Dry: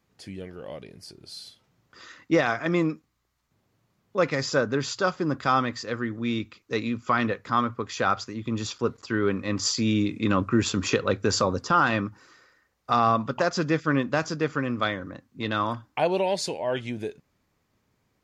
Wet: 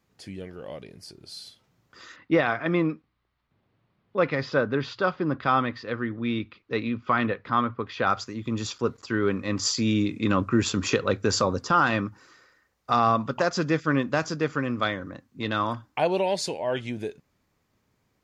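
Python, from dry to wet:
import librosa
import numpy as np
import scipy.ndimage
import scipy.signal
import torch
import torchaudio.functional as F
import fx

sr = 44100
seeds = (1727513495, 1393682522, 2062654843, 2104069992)

y = fx.lowpass(x, sr, hz=3900.0, slope=24, at=(2.16, 8.07))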